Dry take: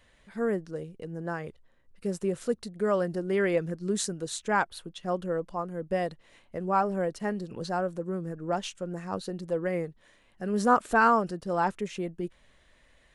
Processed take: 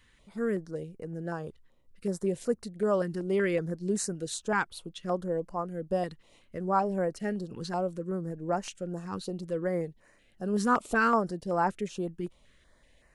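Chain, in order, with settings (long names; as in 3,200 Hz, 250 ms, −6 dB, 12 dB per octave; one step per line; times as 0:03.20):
notch on a step sequencer 5.3 Hz 630–3,400 Hz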